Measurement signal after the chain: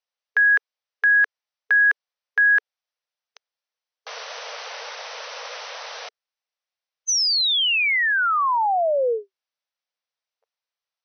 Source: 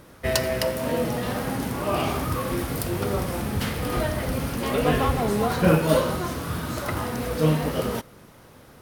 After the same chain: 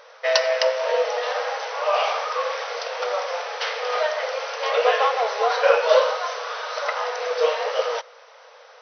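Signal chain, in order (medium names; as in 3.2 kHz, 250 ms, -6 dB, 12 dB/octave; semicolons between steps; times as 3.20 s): brick-wall FIR band-pass 440–6200 Hz; trim +5.5 dB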